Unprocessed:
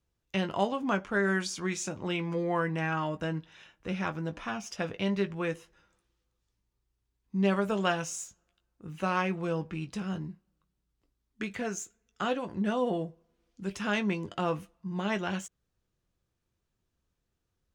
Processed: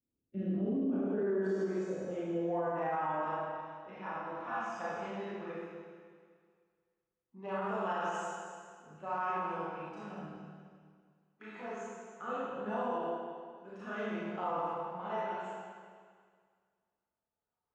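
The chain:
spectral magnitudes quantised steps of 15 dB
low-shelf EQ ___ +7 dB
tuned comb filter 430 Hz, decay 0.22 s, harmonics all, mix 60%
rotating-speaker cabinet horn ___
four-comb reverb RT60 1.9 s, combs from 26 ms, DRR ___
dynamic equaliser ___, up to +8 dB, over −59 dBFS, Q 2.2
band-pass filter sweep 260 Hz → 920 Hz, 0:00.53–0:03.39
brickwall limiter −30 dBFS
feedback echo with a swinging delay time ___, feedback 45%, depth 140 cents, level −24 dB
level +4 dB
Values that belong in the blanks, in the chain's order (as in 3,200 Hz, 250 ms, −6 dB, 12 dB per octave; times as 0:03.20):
220 Hz, 0.6 Hz, −9.5 dB, 7,500 Hz, 212 ms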